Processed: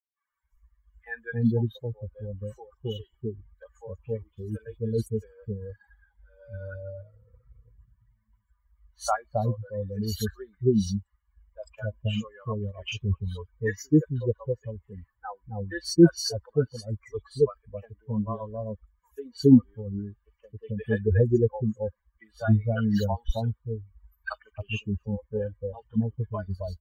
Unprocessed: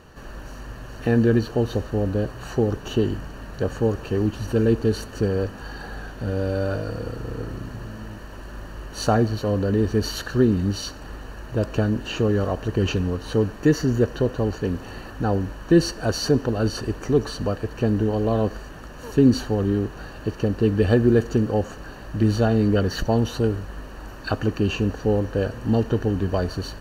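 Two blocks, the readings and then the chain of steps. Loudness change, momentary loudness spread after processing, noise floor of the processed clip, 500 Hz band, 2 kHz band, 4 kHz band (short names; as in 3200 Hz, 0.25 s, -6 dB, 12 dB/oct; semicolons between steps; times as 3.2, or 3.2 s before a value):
-5.0 dB, 18 LU, -74 dBFS, -7.0 dB, -6.5 dB, -6.5 dB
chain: per-bin expansion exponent 3; three bands offset in time mids, highs, lows 40/270 ms, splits 650/3200 Hz; gain +4 dB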